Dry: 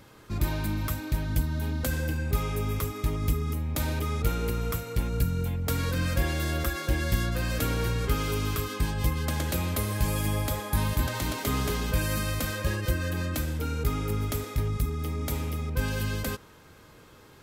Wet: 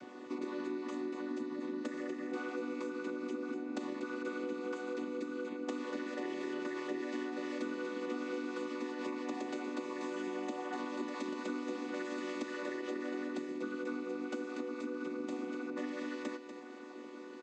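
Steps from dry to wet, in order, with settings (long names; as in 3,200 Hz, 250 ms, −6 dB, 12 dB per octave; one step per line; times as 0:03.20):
channel vocoder with a chord as carrier minor triad, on B3
downward compressor 6 to 1, threshold −41 dBFS, peak gain reduction 16.5 dB
on a send: single-tap delay 241 ms −10 dB
on the sum: level +4 dB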